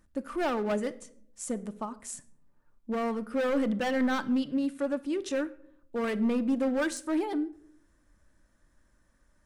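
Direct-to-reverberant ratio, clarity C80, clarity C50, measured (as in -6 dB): 10.0 dB, 21.5 dB, 18.0 dB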